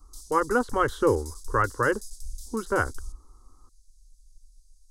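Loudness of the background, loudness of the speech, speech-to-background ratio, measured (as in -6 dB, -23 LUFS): -43.5 LUFS, -26.5 LUFS, 17.0 dB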